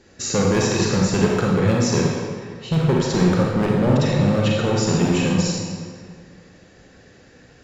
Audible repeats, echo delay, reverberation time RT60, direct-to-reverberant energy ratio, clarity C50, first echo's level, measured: no echo audible, no echo audible, 1.9 s, −3.0 dB, −1.0 dB, no echo audible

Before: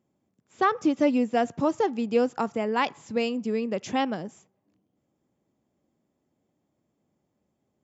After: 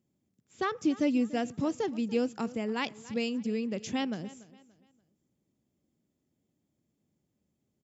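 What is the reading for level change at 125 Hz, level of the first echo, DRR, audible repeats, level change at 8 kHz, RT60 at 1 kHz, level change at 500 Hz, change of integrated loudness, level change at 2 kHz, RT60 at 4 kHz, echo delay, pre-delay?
−1.5 dB, −19.0 dB, no reverb audible, 2, can't be measured, no reverb audible, −7.5 dB, −5.5 dB, −5.5 dB, no reverb audible, 289 ms, no reverb audible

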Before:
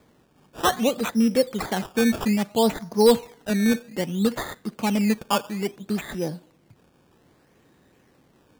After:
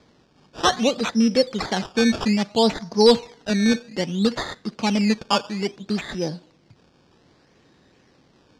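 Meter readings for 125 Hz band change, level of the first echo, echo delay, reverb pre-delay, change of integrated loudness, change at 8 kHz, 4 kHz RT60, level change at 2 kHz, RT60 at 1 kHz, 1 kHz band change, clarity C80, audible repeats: +1.5 dB, no echo audible, no echo audible, no reverb audible, +2.0 dB, +0.5 dB, no reverb audible, +2.5 dB, no reverb audible, +1.5 dB, no reverb audible, no echo audible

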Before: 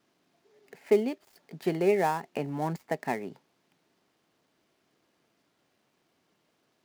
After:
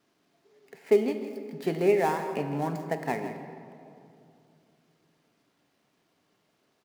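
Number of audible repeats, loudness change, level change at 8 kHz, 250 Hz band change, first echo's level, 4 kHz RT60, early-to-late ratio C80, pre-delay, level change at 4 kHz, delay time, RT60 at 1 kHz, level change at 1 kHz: 1, +1.0 dB, +0.5 dB, +1.0 dB, −12.5 dB, 1.4 s, 7.5 dB, 3 ms, +1.0 dB, 162 ms, 2.4 s, +0.5 dB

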